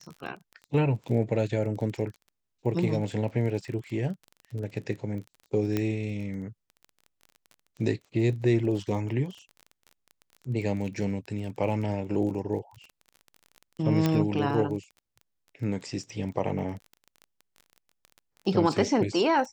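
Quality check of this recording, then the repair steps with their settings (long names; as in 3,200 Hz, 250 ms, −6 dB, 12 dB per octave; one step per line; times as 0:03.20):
surface crackle 23 per second −36 dBFS
0:05.77: click −14 dBFS
0:14.06: click −12 dBFS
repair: click removal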